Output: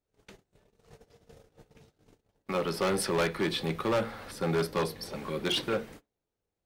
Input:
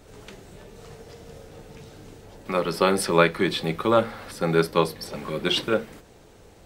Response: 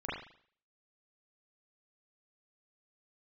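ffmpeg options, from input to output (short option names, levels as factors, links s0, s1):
-filter_complex "[0:a]bandreject=f=7700:w=22,agate=range=0.0251:threshold=0.00891:ratio=16:detection=peak,asoftclip=type=hard:threshold=0.106,asplit=2[s0][s1];[1:a]atrim=start_sample=2205,atrim=end_sample=3969[s2];[s1][s2]afir=irnorm=-1:irlink=0,volume=0.0398[s3];[s0][s3]amix=inputs=2:normalize=0,volume=0.596"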